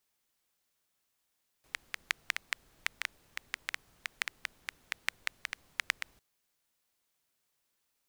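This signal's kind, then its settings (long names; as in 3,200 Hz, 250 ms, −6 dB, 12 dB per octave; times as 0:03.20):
rain-like ticks over hiss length 4.55 s, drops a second 5.8, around 2,000 Hz, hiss −24 dB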